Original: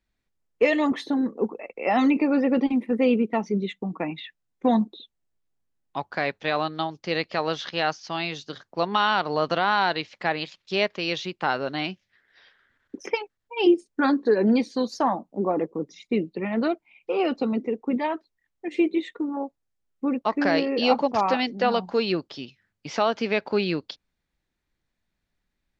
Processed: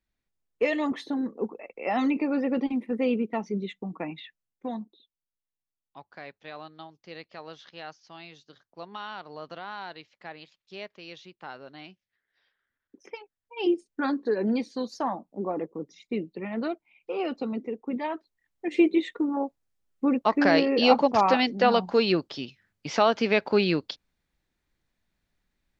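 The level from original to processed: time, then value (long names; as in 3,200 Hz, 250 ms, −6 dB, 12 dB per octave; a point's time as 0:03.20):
0:04.22 −5 dB
0:04.90 −16.5 dB
0:12.97 −16.5 dB
0:13.70 −6 dB
0:17.93 −6 dB
0:18.70 +1.5 dB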